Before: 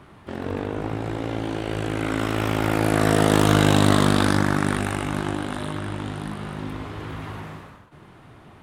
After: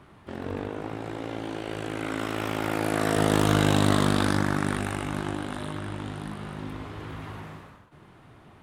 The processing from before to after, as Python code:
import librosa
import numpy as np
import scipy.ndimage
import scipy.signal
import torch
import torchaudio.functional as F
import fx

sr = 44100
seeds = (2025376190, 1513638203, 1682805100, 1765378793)

y = fx.low_shelf(x, sr, hz=120.0, db=-10.5, at=(0.68, 3.17))
y = y * librosa.db_to_amplitude(-4.5)